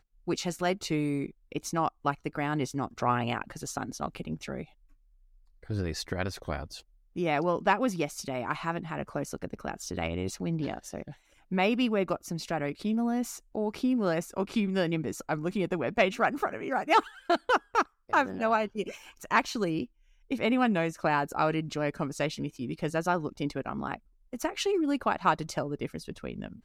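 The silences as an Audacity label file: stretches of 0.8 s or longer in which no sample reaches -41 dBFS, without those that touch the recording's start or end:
4.640000	5.630000	silence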